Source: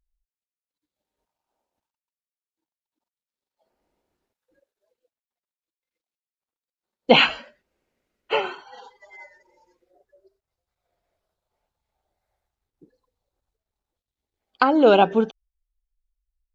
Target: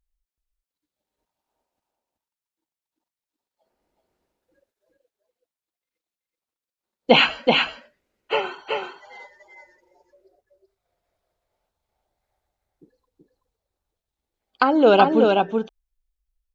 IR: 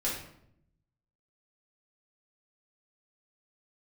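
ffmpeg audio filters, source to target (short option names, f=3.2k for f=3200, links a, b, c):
-af "aecho=1:1:378:0.668"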